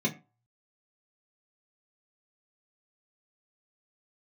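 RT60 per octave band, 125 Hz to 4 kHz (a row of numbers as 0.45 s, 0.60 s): 0.45 s, 0.30 s, 0.30 s, 0.35 s, 0.30 s, 0.20 s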